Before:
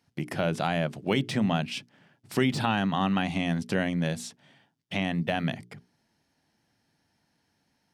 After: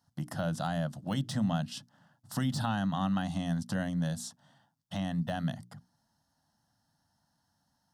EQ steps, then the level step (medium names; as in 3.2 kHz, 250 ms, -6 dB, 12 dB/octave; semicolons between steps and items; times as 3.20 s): dynamic bell 960 Hz, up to -7 dB, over -43 dBFS, Q 1.3; static phaser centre 970 Hz, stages 4; 0.0 dB